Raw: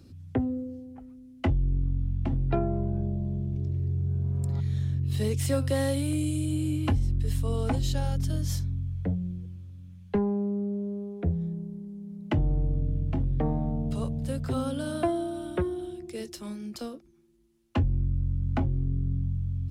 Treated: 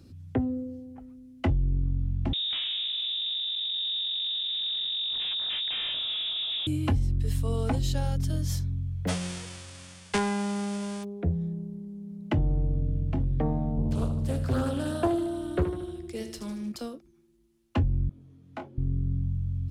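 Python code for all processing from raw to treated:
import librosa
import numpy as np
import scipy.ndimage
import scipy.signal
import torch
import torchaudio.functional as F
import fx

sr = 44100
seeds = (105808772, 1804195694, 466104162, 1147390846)

y = fx.chain(x, sr, fx.low_shelf(hz=360.0, db=4.5),
    fx.clip_hard(threshold_db=-30.5),
    fx.freq_invert(carrier_hz=3700), at=(2.33, 6.67))
y = fx.envelope_flatten(y, sr, power=0.3, at=(9.07, 11.03), fade=0.02)
y = fx.ellip_lowpass(y, sr, hz=9400.0, order=4, stop_db=50, at=(9.07, 11.03), fade=0.02)
y = fx.notch(y, sr, hz=4000.0, q=21.0, at=(9.07, 11.03), fade=0.02)
y = fx.chain(y, sr, fx.low_shelf(hz=110.0, db=7.0),
    fx.echo_feedback(ms=76, feedback_pct=52, wet_db=-9.5),
    fx.doppler_dist(depth_ms=0.46), at=(13.77, 16.72))
y = fx.chain(y, sr, fx.highpass(hz=350.0, slope=12),
    fx.detune_double(cents=37), at=(18.09, 18.78))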